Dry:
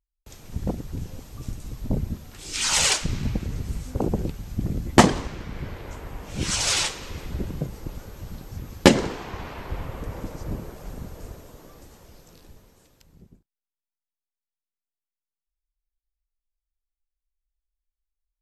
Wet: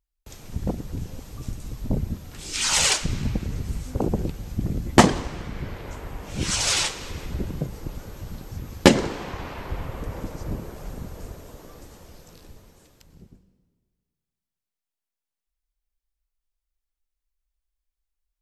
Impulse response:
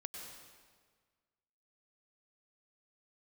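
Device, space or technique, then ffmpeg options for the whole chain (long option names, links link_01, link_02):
ducked reverb: -filter_complex "[0:a]asplit=3[link_01][link_02][link_03];[1:a]atrim=start_sample=2205[link_04];[link_02][link_04]afir=irnorm=-1:irlink=0[link_05];[link_03]apad=whole_len=812300[link_06];[link_05][link_06]sidechaincompress=threshold=-42dB:ratio=3:attack=16:release=232,volume=-4.5dB[link_07];[link_01][link_07]amix=inputs=2:normalize=0"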